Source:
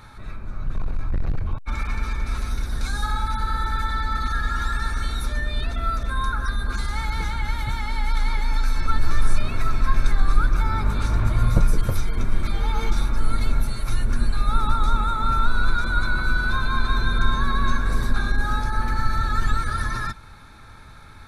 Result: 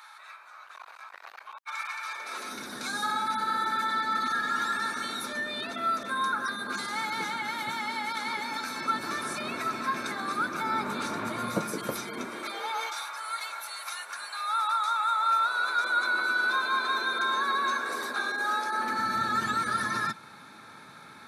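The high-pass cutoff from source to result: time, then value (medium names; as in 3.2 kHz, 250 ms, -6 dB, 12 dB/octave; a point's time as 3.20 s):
high-pass 24 dB/octave
2.02 s 860 Hz
2.59 s 220 Hz
12.13 s 220 Hz
13.04 s 770 Hz
15.01 s 770 Hz
16.16 s 360 Hz
18.60 s 360 Hz
19.21 s 170 Hz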